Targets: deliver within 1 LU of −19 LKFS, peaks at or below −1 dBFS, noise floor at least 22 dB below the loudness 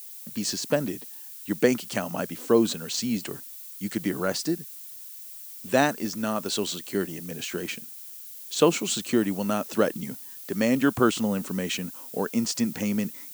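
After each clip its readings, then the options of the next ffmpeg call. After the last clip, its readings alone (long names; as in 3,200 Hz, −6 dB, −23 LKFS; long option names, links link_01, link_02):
background noise floor −42 dBFS; target noise floor −49 dBFS; integrated loudness −27.0 LKFS; sample peak −4.5 dBFS; target loudness −19.0 LKFS
→ -af "afftdn=noise_reduction=7:noise_floor=-42"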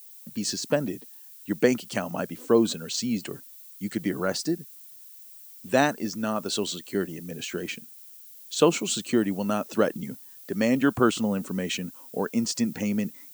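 background noise floor −47 dBFS; target noise floor −49 dBFS
→ -af "afftdn=noise_reduction=6:noise_floor=-47"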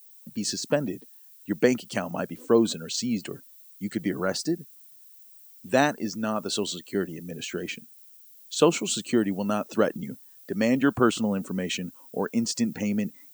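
background noise floor −51 dBFS; integrated loudness −27.0 LKFS; sample peak −4.5 dBFS; target loudness −19.0 LKFS
→ -af "volume=8dB,alimiter=limit=-1dB:level=0:latency=1"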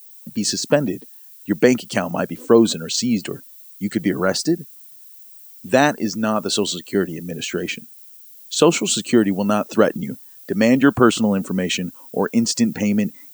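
integrated loudness −19.5 LKFS; sample peak −1.0 dBFS; background noise floor −43 dBFS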